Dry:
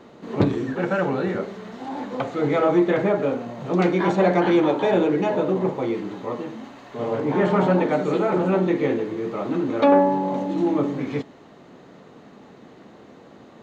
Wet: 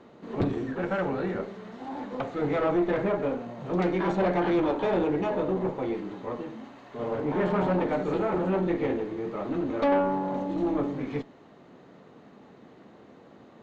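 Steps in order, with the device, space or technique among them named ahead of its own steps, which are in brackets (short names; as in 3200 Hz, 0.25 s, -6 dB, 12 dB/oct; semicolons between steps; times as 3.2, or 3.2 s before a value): tube preamp driven hard (tube stage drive 15 dB, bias 0.5; high shelf 5100 Hz -7.5 dB); gain -3 dB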